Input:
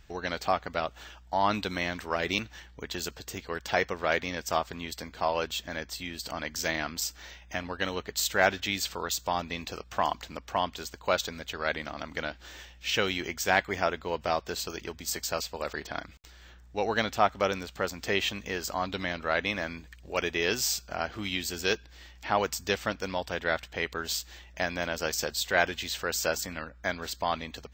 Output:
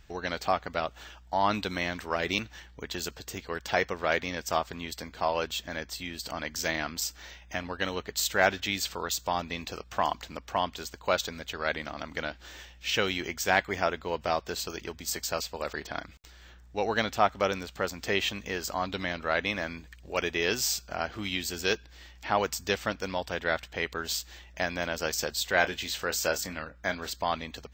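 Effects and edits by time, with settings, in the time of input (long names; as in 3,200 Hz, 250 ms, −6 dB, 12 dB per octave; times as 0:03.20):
0:25.58–0:27.10: double-tracking delay 27 ms −11 dB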